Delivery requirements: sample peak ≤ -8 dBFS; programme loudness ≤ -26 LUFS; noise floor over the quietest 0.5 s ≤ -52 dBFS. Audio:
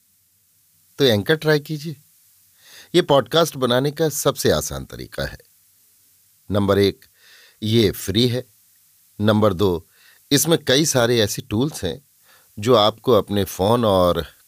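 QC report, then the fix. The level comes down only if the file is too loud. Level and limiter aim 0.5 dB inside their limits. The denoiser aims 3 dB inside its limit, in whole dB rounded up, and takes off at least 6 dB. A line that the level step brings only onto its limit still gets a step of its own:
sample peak -3.5 dBFS: fail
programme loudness -19.0 LUFS: fail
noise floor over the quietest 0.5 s -61 dBFS: pass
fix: trim -7.5 dB

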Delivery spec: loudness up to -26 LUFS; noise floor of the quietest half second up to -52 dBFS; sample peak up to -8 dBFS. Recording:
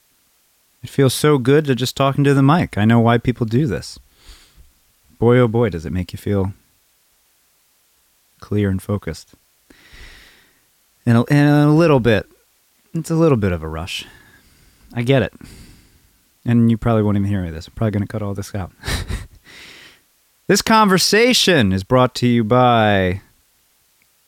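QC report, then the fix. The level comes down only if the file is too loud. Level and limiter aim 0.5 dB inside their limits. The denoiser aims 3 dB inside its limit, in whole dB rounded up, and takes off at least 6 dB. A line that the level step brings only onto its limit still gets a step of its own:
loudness -16.5 LUFS: fail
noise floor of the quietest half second -59 dBFS: pass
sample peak -3.5 dBFS: fail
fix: trim -10 dB

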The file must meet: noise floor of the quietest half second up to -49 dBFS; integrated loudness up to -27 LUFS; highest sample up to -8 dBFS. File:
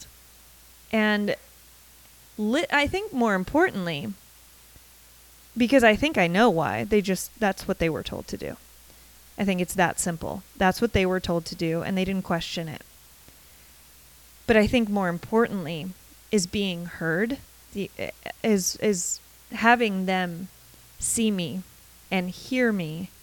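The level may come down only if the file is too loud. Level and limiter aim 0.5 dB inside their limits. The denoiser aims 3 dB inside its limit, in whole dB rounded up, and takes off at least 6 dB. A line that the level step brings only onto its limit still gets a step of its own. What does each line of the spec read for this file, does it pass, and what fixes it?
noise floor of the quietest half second -52 dBFS: pass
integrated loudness -25.0 LUFS: fail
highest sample -4.0 dBFS: fail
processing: trim -2.5 dB; peak limiter -8.5 dBFS

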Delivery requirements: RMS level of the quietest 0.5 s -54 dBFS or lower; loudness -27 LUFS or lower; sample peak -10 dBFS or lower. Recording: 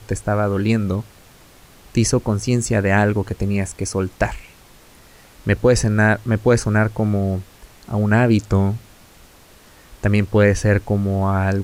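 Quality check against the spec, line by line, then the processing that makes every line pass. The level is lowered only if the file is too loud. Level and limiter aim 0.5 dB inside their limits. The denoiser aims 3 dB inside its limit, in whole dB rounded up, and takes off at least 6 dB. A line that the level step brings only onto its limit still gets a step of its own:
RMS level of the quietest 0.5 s -47 dBFS: fail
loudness -19.0 LUFS: fail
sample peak -4.0 dBFS: fail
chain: trim -8.5 dB

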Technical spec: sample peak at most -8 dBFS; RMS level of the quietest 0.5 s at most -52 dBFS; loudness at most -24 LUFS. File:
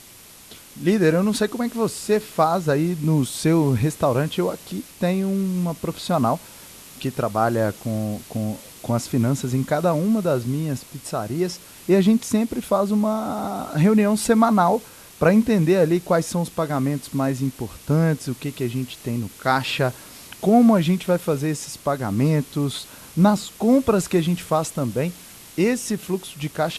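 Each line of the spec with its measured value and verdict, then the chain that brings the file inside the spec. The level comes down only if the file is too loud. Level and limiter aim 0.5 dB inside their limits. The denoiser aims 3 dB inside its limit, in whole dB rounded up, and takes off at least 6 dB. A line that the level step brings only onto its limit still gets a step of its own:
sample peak -4.0 dBFS: fail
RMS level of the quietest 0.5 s -46 dBFS: fail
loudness -21.5 LUFS: fail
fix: noise reduction 6 dB, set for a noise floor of -46 dBFS; trim -3 dB; peak limiter -8.5 dBFS

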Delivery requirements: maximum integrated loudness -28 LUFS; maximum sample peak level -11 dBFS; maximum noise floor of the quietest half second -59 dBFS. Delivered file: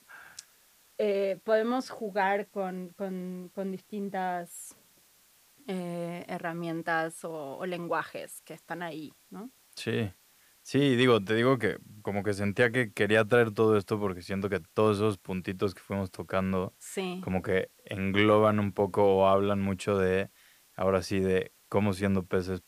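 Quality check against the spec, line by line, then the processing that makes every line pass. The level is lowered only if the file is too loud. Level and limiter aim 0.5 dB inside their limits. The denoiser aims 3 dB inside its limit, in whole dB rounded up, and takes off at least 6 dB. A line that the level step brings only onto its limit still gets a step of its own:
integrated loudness -29.0 LUFS: pass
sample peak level -12.0 dBFS: pass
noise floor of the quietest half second -63 dBFS: pass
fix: none needed

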